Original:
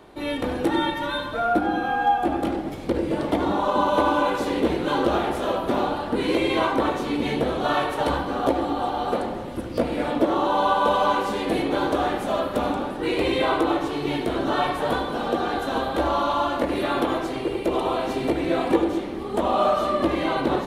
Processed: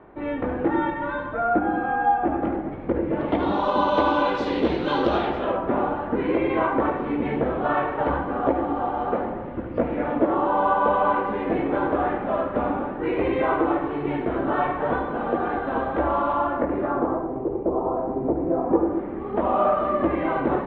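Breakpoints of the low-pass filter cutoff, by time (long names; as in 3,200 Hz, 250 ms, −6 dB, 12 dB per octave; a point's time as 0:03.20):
low-pass filter 24 dB per octave
0:03.10 2,000 Hz
0:03.60 4,900 Hz
0:05.19 4,900 Hz
0:05.59 2,100 Hz
0:16.36 2,100 Hz
0:17.36 1,000 Hz
0:18.60 1,000 Hz
0:19.28 2,100 Hz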